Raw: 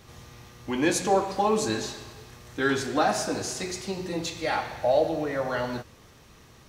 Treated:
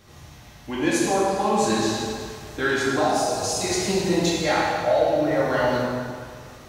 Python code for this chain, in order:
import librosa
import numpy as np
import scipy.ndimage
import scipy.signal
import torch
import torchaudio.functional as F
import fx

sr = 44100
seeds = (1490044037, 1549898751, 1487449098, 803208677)

y = fx.rider(x, sr, range_db=10, speed_s=0.5)
y = fx.fixed_phaser(y, sr, hz=680.0, stages=4, at=(2.99, 3.64))
y = fx.rev_plate(y, sr, seeds[0], rt60_s=2.0, hf_ratio=0.75, predelay_ms=0, drr_db=-4.0)